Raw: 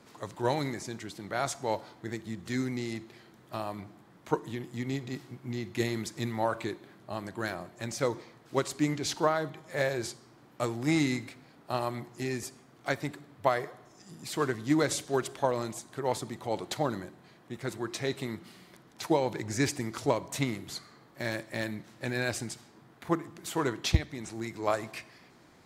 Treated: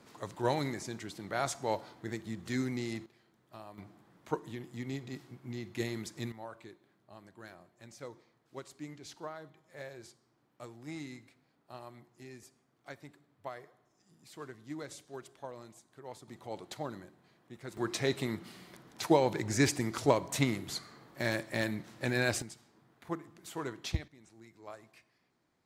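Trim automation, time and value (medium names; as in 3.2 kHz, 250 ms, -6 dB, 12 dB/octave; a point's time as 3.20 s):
-2 dB
from 3.06 s -13.5 dB
from 3.78 s -5.5 dB
from 6.32 s -16.5 dB
from 16.28 s -9.5 dB
from 17.77 s +1 dB
from 22.42 s -9 dB
from 24.08 s -19 dB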